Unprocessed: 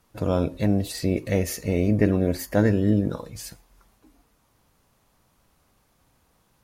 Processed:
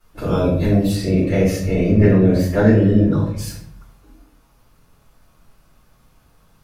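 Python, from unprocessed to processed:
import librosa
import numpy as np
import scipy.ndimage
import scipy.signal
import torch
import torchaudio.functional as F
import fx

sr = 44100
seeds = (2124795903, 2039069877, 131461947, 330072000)

y = fx.high_shelf(x, sr, hz=7500.0, db=-11.0, at=(0.92, 3.38))
y = fx.room_shoebox(y, sr, seeds[0], volume_m3=89.0, walls='mixed', distance_m=4.0)
y = y * 10.0 ** (-7.5 / 20.0)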